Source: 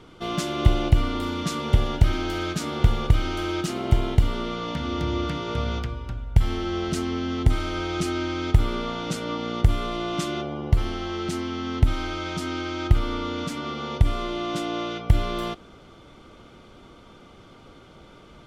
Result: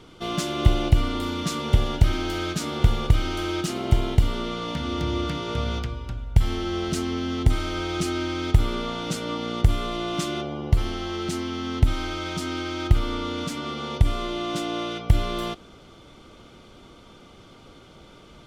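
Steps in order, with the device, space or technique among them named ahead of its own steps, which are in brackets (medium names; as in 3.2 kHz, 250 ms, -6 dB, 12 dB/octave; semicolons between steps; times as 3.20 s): exciter from parts (in parallel at -4.5 dB: high-pass 2.3 kHz 12 dB/octave + saturation -37.5 dBFS, distortion -10 dB)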